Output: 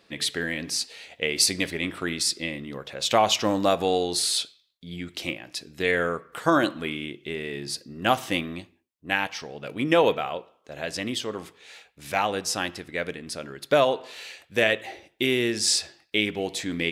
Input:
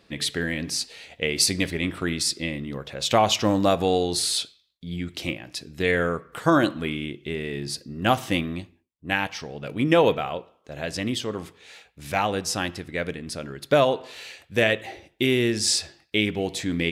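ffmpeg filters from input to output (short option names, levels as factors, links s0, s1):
-af "lowshelf=f=180:g=-11"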